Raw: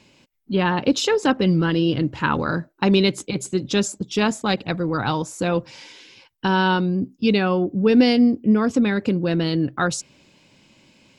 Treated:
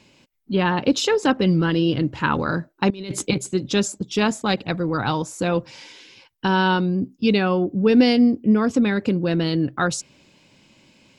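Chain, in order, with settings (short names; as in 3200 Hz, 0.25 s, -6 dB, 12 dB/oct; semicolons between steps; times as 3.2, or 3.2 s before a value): 2.9–3.38 negative-ratio compressor -24 dBFS, ratio -0.5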